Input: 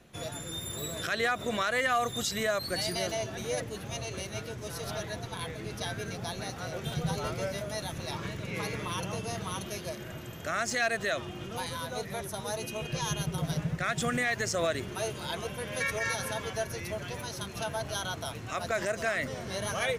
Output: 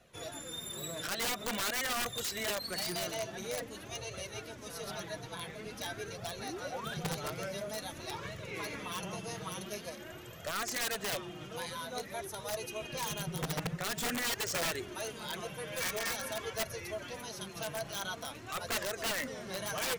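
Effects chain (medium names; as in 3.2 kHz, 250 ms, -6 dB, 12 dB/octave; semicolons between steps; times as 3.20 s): bass shelf 160 Hz -7 dB; painted sound rise, 6.40–6.95 s, 200–1800 Hz -40 dBFS; flange 0.48 Hz, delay 1.4 ms, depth 5.3 ms, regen +21%; integer overflow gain 28 dB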